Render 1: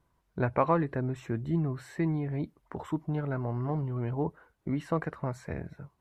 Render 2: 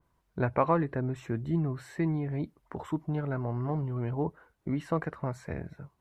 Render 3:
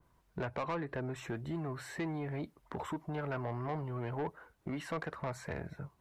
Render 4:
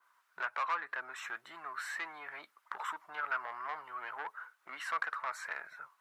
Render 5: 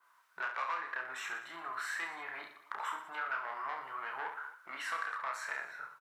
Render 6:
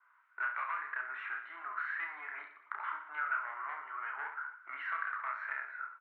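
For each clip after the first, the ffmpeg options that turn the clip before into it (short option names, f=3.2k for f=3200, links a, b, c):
-af "adynamicequalizer=threshold=0.00562:dfrequency=2800:dqfactor=0.7:tfrequency=2800:tqfactor=0.7:attack=5:release=100:ratio=0.375:range=2:mode=cutabove:tftype=highshelf"
-filter_complex "[0:a]acrossover=split=450[a][b];[a]acompressor=threshold=-41dB:ratio=6[c];[b]alimiter=limit=-24dB:level=0:latency=1:release=318[d];[c][d]amix=inputs=2:normalize=0,asoftclip=type=tanh:threshold=-33dB,volume=3dB"
-af "highpass=f=1.3k:t=q:w=2.9,volume=1.5dB"
-filter_complex "[0:a]acompressor=threshold=-39dB:ratio=2,asplit=2[a][b];[b]aecho=0:1:30|69|119.7|185.6|271.3:0.631|0.398|0.251|0.158|0.1[c];[a][c]amix=inputs=2:normalize=0,volume=1dB"
-af "highpass=f=310:w=0.5412,highpass=f=310:w=1.3066,equalizer=f=340:t=q:w=4:g=-5,equalizer=f=500:t=q:w=4:g=-10,equalizer=f=750:t=q:w=4:g=-4,equalizer=f=1.4k:t=q:w=4:g=8,equalizer=f=2.1k:t=q:w=4:g=5,lowpass=f=2.5k:w=0.5412,lowpass=f=2.5k:w=1.3066,volume=-3.5dB"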